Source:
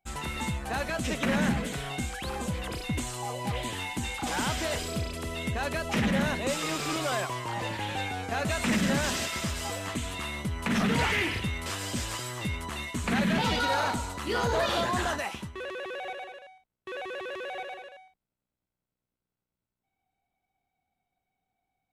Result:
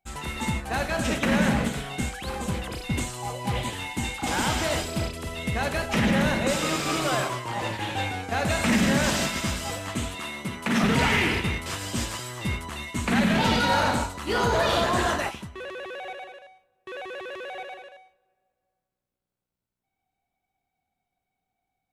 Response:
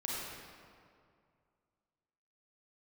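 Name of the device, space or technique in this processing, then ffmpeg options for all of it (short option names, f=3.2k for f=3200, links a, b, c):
keyed gated reverb: -filter_complex "[0:a]asplit=3[a][b][c];[1:a]atrim=start_sample=2205[d];[b][d]afir=irnorm=-1:irlink=0[e];[c]apad=whole_len=966920[f];[e][f]sidechaingate=range=-22dB:threshold=-32dB:ratio=16:detection=peak,volume=-3.5dB[g];[a][g]amix=inputs=2:normalize=0,asettb=1/sr,asplit=3[h][i][j];[h]atrim=end=10.154[k];[i]atrim=start=10.15:end=10.84,asetpts=PTS-STARTPTS,afade=t=in:d=0.004:c=qsin,afade=t=out:st=0.686:d=0.004:c=qsin,highpass=160[l];[j]atrim=start=10.836[m];[k][l]acrossfade=d=0.004:c1=hsin:c2=qsin[n];[n][m]acrossfade=d=0.004:c1=qsin:c2=hsin"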